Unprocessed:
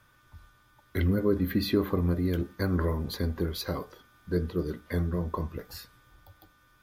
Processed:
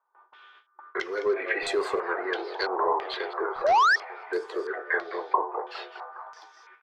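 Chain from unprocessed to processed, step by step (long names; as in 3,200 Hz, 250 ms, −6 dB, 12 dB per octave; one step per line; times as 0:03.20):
stylus tracing distortion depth 0.074 ms
echo with shifted repeats 205 ms, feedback 58%, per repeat +140 Hz, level −13.5 dB
sound drawn into the spectrogram rise, 0:03.64–0:03.96, 540–1,900 Hz −21 dBFS
elliptic high-pass filter 380 Hz, stop band 40 dB
parametric band 570 Hz −8 dB 0.3 octaves
noise gate with hold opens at −53 dBFS
mid-hump overdrive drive 14 dB, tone 1,800 Hz, clips at −15.5 dBFS
low-pass on a step sequencer 3 Hz 890–7,900 Hz
level +1.5 dB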